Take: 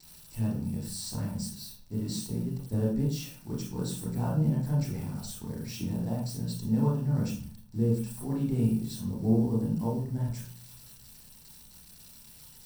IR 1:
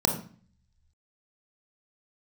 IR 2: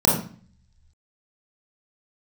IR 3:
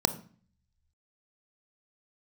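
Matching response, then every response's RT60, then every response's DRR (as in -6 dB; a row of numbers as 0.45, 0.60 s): 2; 0.45, 0.45, 0.45 s; 2.0, -5.0, 10.5 dB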